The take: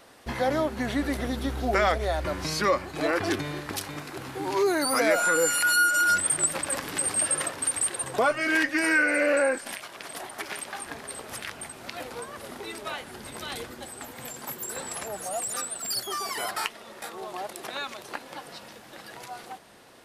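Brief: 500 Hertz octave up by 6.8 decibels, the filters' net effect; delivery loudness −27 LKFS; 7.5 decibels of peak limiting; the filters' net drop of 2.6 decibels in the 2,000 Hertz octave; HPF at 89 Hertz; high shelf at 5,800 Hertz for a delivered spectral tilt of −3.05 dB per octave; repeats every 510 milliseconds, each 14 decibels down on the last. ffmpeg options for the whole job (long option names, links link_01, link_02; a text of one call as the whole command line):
ffmpeg -i in.wav -af "highpass=89,equalizer=frequency=500:width_type=o:gain=8.5,equalizer=frequency=2000:width_type=o:gain=-5.5,highshelf=frequency=5800:gain=5.5,alimiter=limit=-14.5dB:level=0:latency=1,aecho=1:1:510|1020:0.2|0.0399,volume=-1.5dB" out.wav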